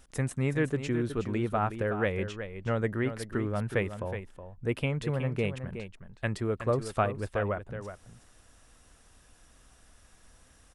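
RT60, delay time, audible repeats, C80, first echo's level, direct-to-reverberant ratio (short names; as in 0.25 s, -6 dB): none, 0.369 s, 1, none, -10.0 dB, none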